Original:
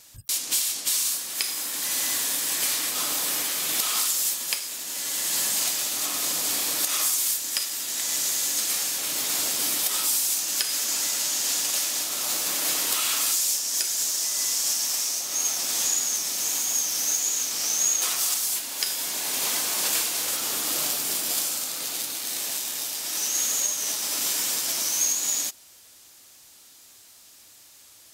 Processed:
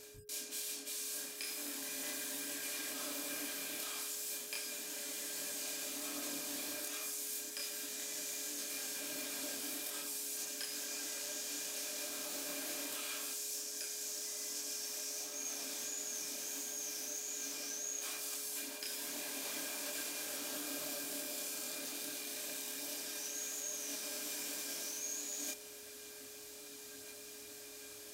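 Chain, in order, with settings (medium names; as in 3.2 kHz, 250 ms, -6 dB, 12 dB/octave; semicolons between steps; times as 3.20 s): reverse; compression 5:1, threshold -41 dBFS, peak gain reduction 19 dB; reverse; chorus voices 2, 1.2 Hz, delay 27 ms, depth 3 ms; small resonant body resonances 280/590/1600/2400 Hz, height 15 dB, ringing for 85 ms; whistle 420 Hz -59 dBFS; trim +2 dB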